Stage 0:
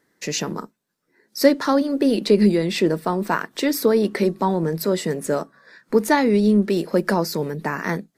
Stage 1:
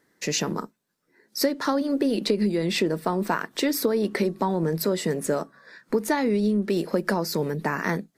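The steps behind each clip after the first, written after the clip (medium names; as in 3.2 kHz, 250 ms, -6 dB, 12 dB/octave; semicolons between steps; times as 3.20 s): compression 10:1, threshold -19 dBFS, peak gain reduction 11.5 dB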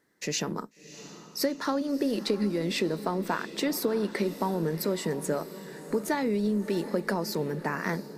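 echo that smears into a reverb 667 ms, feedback 52%, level -14 dB; trim -4.5 dB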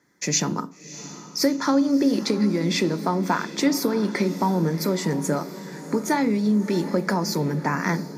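reverberation RT60 0.55 s, pre-delay 3 ms, DRR 12 dB; trim +2 dB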